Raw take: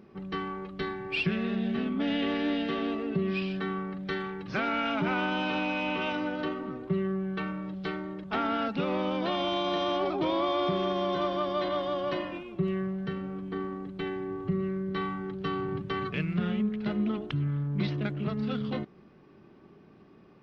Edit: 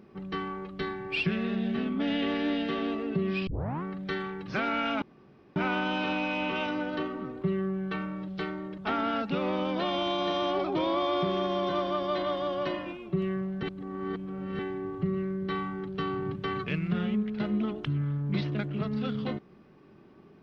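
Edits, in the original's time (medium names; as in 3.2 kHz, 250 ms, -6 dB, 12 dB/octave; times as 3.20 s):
3.47 s: tape start 0.36 s
5.02 s: insert room tone 0.54 s
13.09–14.05 s: reverse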